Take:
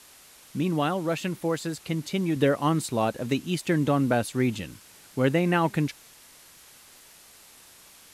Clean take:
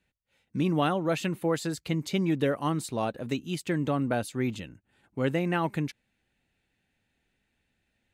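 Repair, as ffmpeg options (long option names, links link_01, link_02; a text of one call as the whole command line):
ffmpeg -i in.wav -af "adeclick=threshold=4,afwtdn=0.0032,asetnsamples=nb_out_samples=441:pad=0,asendcmd='2.36 volume volume -4.5dB',volume=0dB" out.wav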